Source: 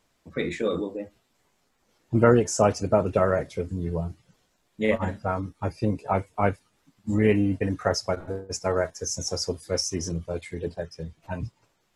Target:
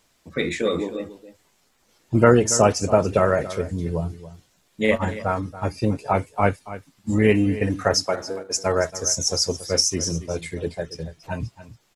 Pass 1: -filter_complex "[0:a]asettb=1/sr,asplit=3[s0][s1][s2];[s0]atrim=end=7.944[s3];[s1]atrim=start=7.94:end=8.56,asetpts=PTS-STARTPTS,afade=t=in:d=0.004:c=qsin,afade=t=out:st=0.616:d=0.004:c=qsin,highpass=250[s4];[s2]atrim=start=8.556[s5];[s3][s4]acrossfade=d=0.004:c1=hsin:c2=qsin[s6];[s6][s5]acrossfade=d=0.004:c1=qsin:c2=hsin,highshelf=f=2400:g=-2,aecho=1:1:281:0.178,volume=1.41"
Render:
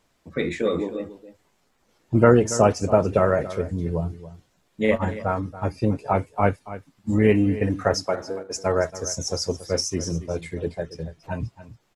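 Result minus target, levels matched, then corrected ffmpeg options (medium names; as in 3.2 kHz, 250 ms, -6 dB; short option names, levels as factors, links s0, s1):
4 kHz band -5.5 dB
-filter_complex "[0:a]asettb=1/sr,asplit=3[s0][s1][s2];[s0]atrim=end=7.944[s3];[s1]atrim=start=7.94:end=8.56,asetpts=PTS-STARTPTS,afade=t=in:d=0.004:c=qsin,afade=t=out:st=0.616:d=0.004:c=qsin,highpass=250[s4];[s2]atrim=start=8.556[s5];[s3][s4]acrossfade=d=0.004:c1=hsin:c2=qsin[s6];[s6][s5]acrossfade=d=0.004:c1=qsin:c2=hsin,highshelf=f=2400:g=6.5,aecho=1:1:281:0.178,volume=1.41"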